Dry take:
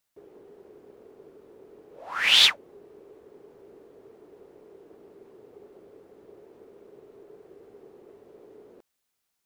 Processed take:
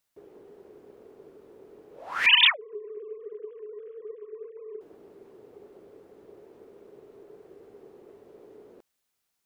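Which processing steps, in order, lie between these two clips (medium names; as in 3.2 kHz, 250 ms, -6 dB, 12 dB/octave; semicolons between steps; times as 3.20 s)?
2.26–4.81 s: formants replaced by sine waves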